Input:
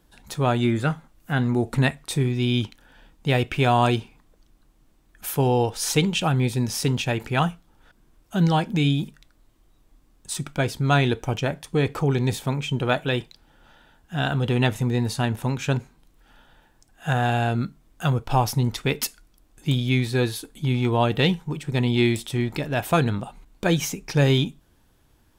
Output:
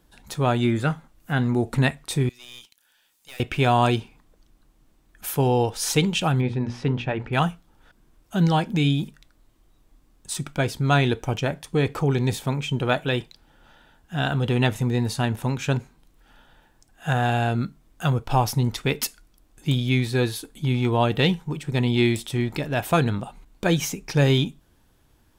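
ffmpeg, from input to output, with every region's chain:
-filter_complex "[0:a]asettb=1/sr,asplit=3[s0][s1][s2];[s0]atrim=end=2.294[s3];[s1]atrim=start=2.29:end=3.4,asetpts=PTS-STARTPTS,afade=t=in:d=0.004:c=qsin,afade=t=out:st=1.106:d=0.004:c=qsin,aderivative,acompressor=mode=upward:threshold=0.00224:ratio=2.5:attack=3.2:release=140:knee=2.83:detection=peak,aeval=exprs='(tanh(63.1*val(0)+0.55)-tanh(0.55))/63.1':c=same[s4];[s2]atrim=start=3.396[s5];[s3][s4]acrossfade=d=0.004:c1=hsin:c2=qsin[s6];[s6][s5]acrossfade=d=0.004:c1=qsin:c2=hsin,asettb=1/sr,asplit=3[s7][s8][s9];[s7]atrim=end=6.414[s10];[s8]atrim=start=6.41:end=7.33,asetpts=PTS-STARTPTS,afade=t=in:d=0.004:c=qsin,afade=t=out:st=0.916:d=0.004:c=qsin,lowpass=2200,bandreject=f=60:t=h:w=6,bandreject=f=120:t=h:w=6,bandreject=f=180:t=h:w=6,bandreject=f=240:t=h:w=6,bandreject=f=300:t=h:w=6,bandreject=f=360:t=h:w=6,bandreject=f=420:t=h:w=6,bandreject=f=480:t=h:w=6,bandreject=f=540:t=h:w=6[s11];[s9]atrim=start=7.326[s12];[s10][s11]acrossfade=d=0.004:c1=hsin:c2=qsin[s13];[s13][s12]acrossfade=d=0.004:c1=qsin:c2=hsin"

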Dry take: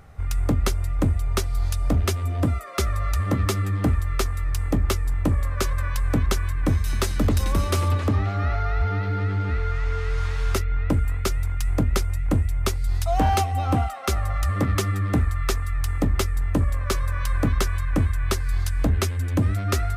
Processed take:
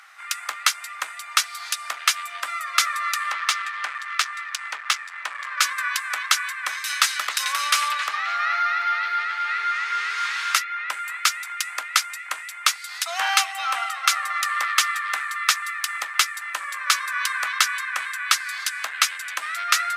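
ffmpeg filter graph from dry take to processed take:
-filter_complex "[0:a]asettb=1/sr,asplit=3[s0][s1][s2];[s0]atrim=end=3.314[s3];[s1]atrim=start=3.31:end=5.61,asetpts=PTS-STARTPTS,afade=t=in:d=0.004:c=qsin,afade=t=out:st=2.296:d=0.004:c=qsin,volume=9.44,asoftclip=hard,volume=0.106,adynamicsmooth=sensitivity=7.5:basefreq=4600[s4];[s2]atrim=start=5.606[s5];[s3][s4]acrossfade=d=0.004:c1=hsin:c2=qsin[s6];[s6][s5]acrossfade=d=0.004:c1=qsin:c2=hsin,highpass=f=1300:w=0.5412,highpass=f=1300:w=1.3066,highshelf=f=10000:g=-10.5,acontrast=76,volume=2"

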